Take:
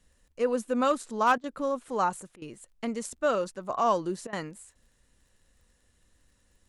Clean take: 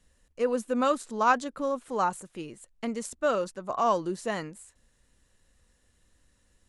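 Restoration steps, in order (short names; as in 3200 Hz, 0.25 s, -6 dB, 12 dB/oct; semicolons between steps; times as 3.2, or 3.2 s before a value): clip repair -15 dBFS; de-click; interpolate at 1.38/2.36/4.27, 57 ms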